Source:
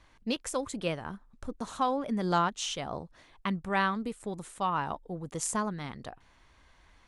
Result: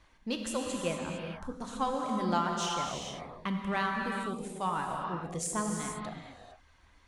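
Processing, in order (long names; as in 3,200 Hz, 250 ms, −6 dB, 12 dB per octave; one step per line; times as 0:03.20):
reverb reduction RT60 0.88 s
in parallel at −8 dB: soft clipping −32 dBFS, distortion −7 dB
on the sum: reverb whose tail is shaped and stops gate 480 ms flat, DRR 0.5 dB
level −4.5 dB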